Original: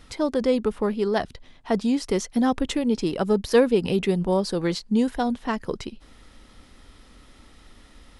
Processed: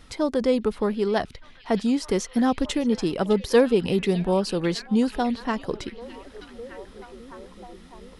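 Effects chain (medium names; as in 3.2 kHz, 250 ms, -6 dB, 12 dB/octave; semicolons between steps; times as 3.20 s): repeats whose band climbs or falls 609 ms, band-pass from 3.2 kHz, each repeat -0.7 oct, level -9 dB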